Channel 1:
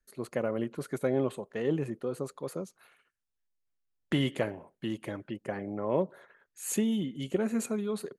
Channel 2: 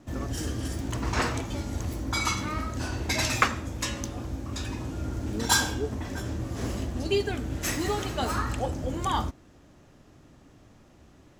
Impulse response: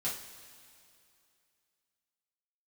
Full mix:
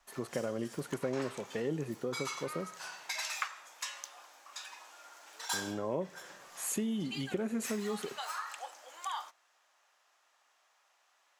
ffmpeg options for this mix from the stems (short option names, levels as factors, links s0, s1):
-filter_complex "[0:a]volume=1.26,asplit=3[s0][s1][s2];[s0]atrim=end=2.92,asetpts=PTS-STARTPTS,afade=t=out:st=2.916:d=0.004:c=hsin[s3];[s1]atrim=start=2.92:end=5.53,asetpts=PTS-STARTPTS,volume=0[s4];[s2]atrim=start=5.53,asetpts=PTS-STARTPTS,afade=t=in:d=0.004:c=hsin[s5];[s3][s4][s5]concat=n=3:v=0:a=1,asplit=2[s6][s7];[s7]volume=0.0794[s8];[1:a]highpass=f=820:w=0.5412,highpass=f=820:w=1.3066,volume=0.501[s9];[2:a]atrim=start_sample=2205[s10];[s8][s10]afir=irnorm=-1:irlink=0[s11];[s6][s9][s11]amix=inputs=3:normalize=0,acompressor=threshold=0.0178:ratio=2.5"